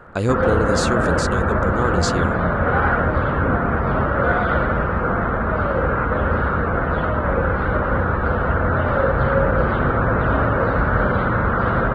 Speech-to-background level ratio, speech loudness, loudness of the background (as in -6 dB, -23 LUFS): -4.5 dB, -24.0 LUFS, -19.5 LUFS